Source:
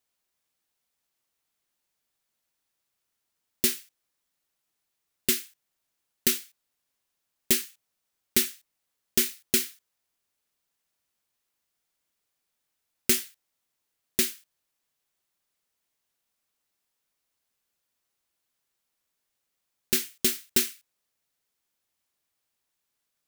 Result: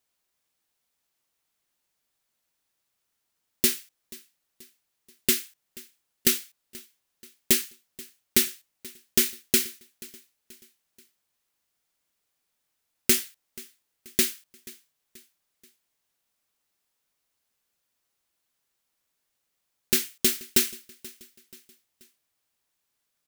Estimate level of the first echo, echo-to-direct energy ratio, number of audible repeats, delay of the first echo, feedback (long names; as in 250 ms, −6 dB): −21.5 dB, −20.5 dB, 3, 482 ms, 46%